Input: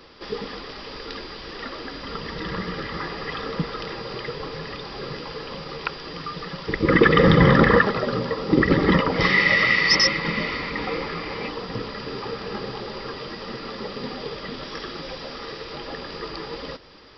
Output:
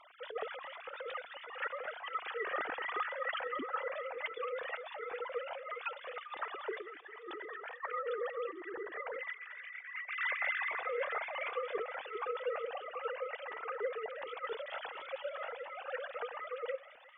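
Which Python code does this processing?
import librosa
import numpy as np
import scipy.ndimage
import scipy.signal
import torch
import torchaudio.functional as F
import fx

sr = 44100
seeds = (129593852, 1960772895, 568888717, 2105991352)

y = fx.sine_speech(x, sr)
y = fx.highpass(y, sr, hz=370.0, slope=12, at=(6.4, 8.74))
y = fx.over_compress(y, sr, threshold_db=-31.0, ratio=-1.0)
y = fx.echo_wet_highpass(y, sr, ms=222, feedback_pct=63, hz=1700.0, wet_db=-12.0)
y = fx.comb_cascade(y, sr, direction='rising', hz=1.4)
y = y * librosa.db_to_amplitude(-4.5)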